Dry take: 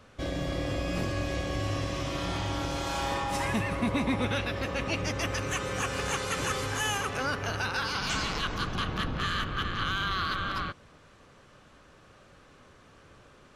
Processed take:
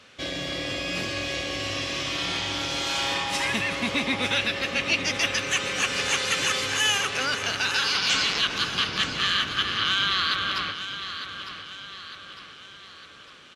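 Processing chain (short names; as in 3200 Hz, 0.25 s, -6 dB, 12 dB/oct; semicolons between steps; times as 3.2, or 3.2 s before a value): weighting filter D; on a send: feedback echo 0.905 s, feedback 48%, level -10.5 dB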